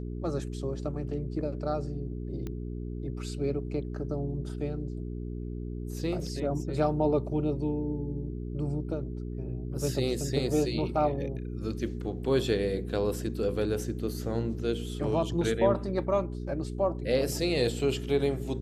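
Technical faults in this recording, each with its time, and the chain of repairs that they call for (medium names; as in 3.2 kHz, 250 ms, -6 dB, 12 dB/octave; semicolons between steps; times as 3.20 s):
hum 60 Hz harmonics 7 -36 dBFS
2.47 s: pop -24 dBFS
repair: de-click; de-hum 60 Hz, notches 7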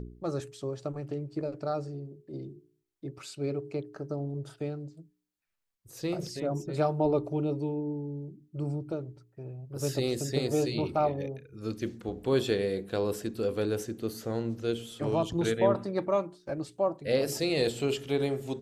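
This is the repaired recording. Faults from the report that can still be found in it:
nothing left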